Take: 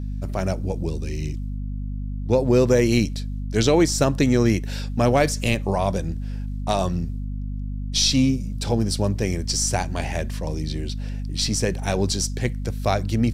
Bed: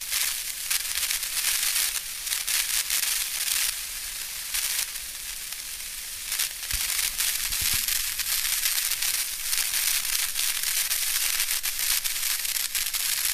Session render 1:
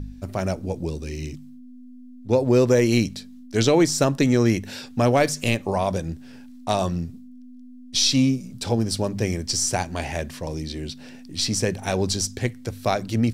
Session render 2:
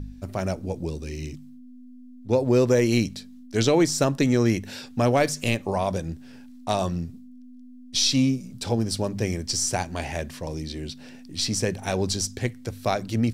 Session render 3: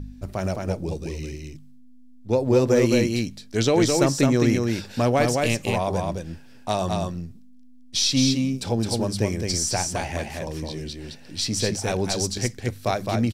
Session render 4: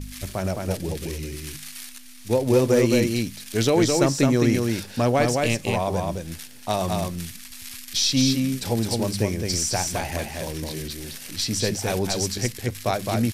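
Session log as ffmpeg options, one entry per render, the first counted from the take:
-af "bandreject=f=50:t=h:w=4,bandreject=f=100:t=h:w=4,bandreject=f=150:t=h:w=4,bandreject=f=200:t=h:w=4"
-af "volume=0.794"
-af "aecho=1:1:214:0.668"
-filter_complex "[1:a]volume=0.2[s0];[0:a][s0]amix=inputs=2:normalize=0"

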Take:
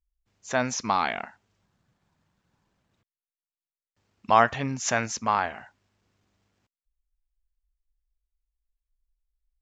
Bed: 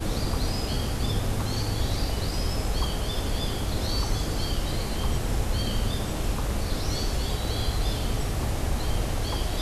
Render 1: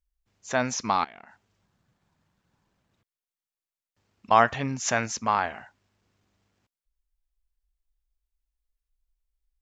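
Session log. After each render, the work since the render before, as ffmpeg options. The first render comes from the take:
-filter_complex "[0:a]asettb=1/sr,asplit=3[s0][s1][s2];[s0]atrim=end=1.044[s3];[s1]atrim=start=1.04:end=4.31,asetpts=PTS-STARTPTS,afade=t=in:d=0.004:c=qsin,afade=t=out:st=3.266:d=0.004:c=qsin,acompressor=threshold=0.00794:ratio=10:attack=3.2:release=140:knee=1:detection=peak[s4];[s2]atrim=start=4.306[s5];[s3][s4]acrossfade=d=0.004:c1=hsin:c2=qsin[s6];[s6][s5]acrossfade=d=0.004:c1=qsin:c2=hsin"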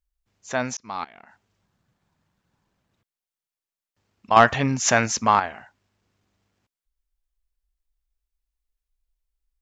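-filter_complex "[0:a]asettb=1/sr,asplit=3[s0][s1][s2];[s0]atrim=end=4.364[s3];[s1]atrim=start=4.36:end=5.4,asetpts=PTS-STARTPTS,afade=t=in:d=0.004:c=qsin,afade=t=out:st=1.036:d=0.004:c=qsin,acontrast=83[s4];[s2]atrim=start=5.396[s5];[s3][s4]acrossfade=d=0.004:c1=hsin:c2=qsin[s6];[s6][s5]acrossfade=d=0.004:c1=qsin:c2=hsin,asplit=2[s7][s8];[s7]atrim=end=0.77,asetpts=PTS-STARTPTS,afade=t=out:st=0.766:d=0.004:c=hsin[s9];[s8]atrim=start=0.77,asetpts=PTS-STARTPTS,afade=t=in:d=0.41[s10];[s9][s10]concat=n=2:v=0:a=1"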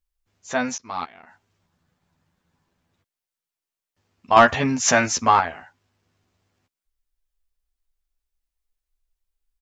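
-filter_complex "[0:a]asplit=2[s0][s1];[s1]adelay=12,volume=0.668[s2];[s0][s2]amix=inputs=2:normalize=0"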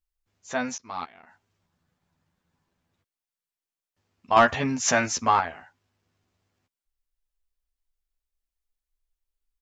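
-af "volume=0.596"

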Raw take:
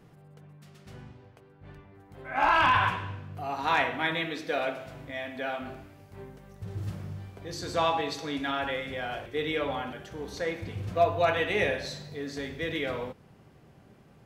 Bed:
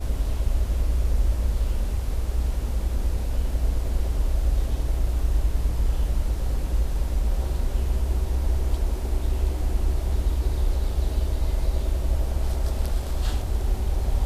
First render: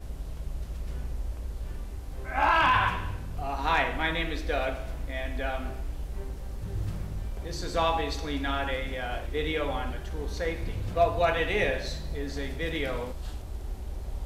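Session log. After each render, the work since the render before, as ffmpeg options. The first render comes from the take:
-filter_complex "[1:a]volume=0.251[s0];[0:a][s0]amix=inputs=2:normalize=0"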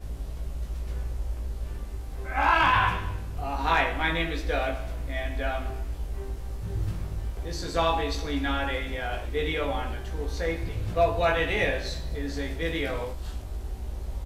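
-filter_complex "[0:a]asplit=2[s0][s1];[s1]adelay=18,volume=0.631[s2];[s0][s2]amix=inputs=2:normalize=0"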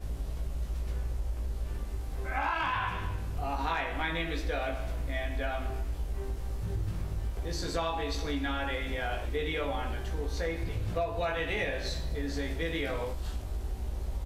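-af "acompressor=threshold=0.0398:ratio=6"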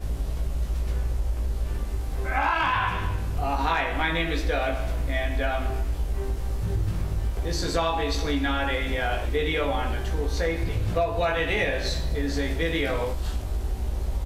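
-af "volume=2.24"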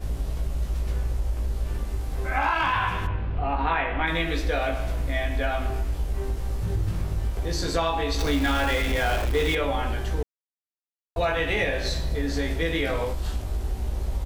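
-filter_complex "[0:a]asplit=3[s0][s1][s2];[s0]afade=t=out:st=3.06:d=0.02[s3];[s1]lowpass=f=3100:w=0.5412,lowpass=f=3100:w=1.3066,afade=t=in:st=3.06:d=0.02,afade=t=out:st=4.06:d=0.02[s4];[s2]afade=t=in:st=4.06:d=0.02[s5];[s3][s4][s5]amix=inputs=3:normalize=0,asettb=1/sr,asplit=3[s6][s7][s8];[s6]atrim=end=8.194[s9];[s7]atrim=start=8.19:end=9.55,asetpts=PTS-STARTPTS,afade=t=in:d=0.004:c=qsin,afade=t=out:st=1.356:d=0.004:c=qsin,aeval=exprs='val(0)+0.5*0.0376*sgn(val(0))':c=same[s10];[s8]atrim=start=9.546[s11];[s9][s10]acrossfade=d=0.004:c1=hsin:c2=qsin[s12];[s12][s11]acrossfade=d=0.004:c1=qsin:c2=hsin,asplit=3[s13][s14][s15];[s13]atrim=end=10.23,asetpts=PTS-STARTPTS,afade=t=out:st=10.226:d=0.004:c=hsin[s16];[s14]atrim=start=10.23:end=11.16,asetpts=PTS-STARTPTS,volume=0[s17];[s15]atrim=start=11.16,asetpts=PTS-STARTPTS,afade=t=in:d=0.004:c=hsin[s18];[s16][s17][s18]concat=n=3:v=0:a=1"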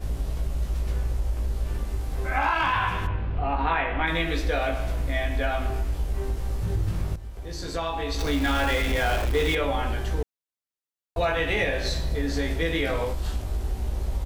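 -filter_complex "[0:a]asplit=2[s0][s1];[s0]atrim=end=7.16,asetpts=PTS-STARTPTS,afade=t=out:st=7.156:d=0.004:c=hsin:silence=0.223872[s2];[s1]atrim=start=7.16,asetpts=PTS-STARTPTS,afade=t=in:d=1.45:silence=0.223872[s3];[s2][s3]concat=n=2:v=0:a=1"

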